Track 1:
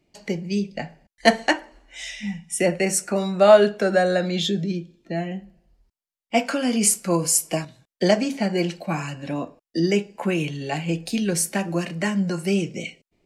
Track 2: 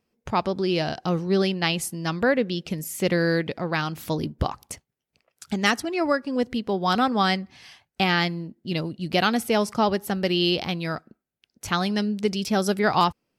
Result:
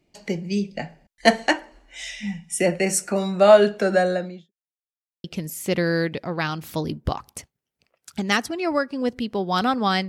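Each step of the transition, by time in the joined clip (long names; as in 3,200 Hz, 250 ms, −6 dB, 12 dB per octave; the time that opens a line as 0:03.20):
track 1
0:03.96–0:04.52: fade out and dull
0:04.52–0:05.24: silence
0:05.24: continue with track 2 from 0:02.58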